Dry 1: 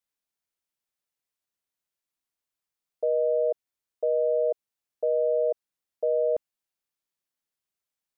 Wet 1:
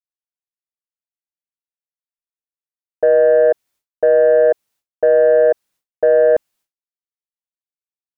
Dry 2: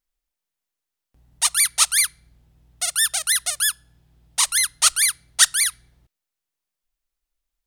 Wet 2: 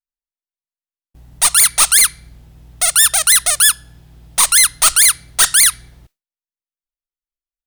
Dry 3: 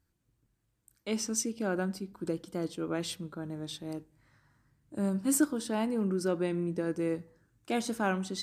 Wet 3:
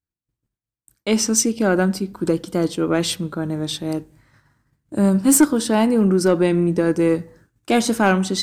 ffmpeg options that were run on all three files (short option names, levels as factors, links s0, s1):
-af "aeval=exprs='0.891*sin(PI/2*1.58*val(0)/0.891)':c=same,aeval=exprs='0.891*(cos(1*acos(clip(val(0)/0.891,-1,1)))-cos(1*PI/2))+0.02*(cos(4*acos(clip(val(0)/0.891,-1,1)))-cos(4*PI/2))+0.398*(cos(5*acos(clip(val(0)/0.891,-1,1)))-cos(5*PI/2))':c=same,agate=range=0.0224:threshold=0.00891:ratio=3:detection=peak,volume=0.668"